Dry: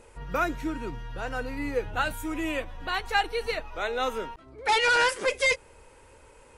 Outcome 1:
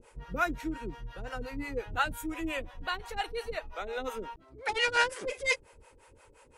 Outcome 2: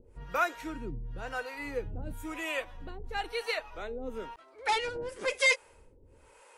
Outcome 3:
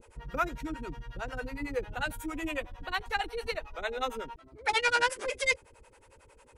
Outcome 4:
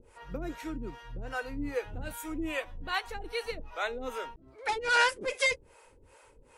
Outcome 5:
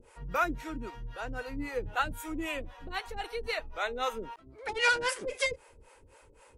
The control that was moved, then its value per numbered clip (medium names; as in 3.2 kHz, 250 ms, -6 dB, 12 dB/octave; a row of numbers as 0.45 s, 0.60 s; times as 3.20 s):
harmonic tremolo, rate: 5.7 Hz, 1 Hz, 11 Hz, 2.5 Hz, 3.8 Hz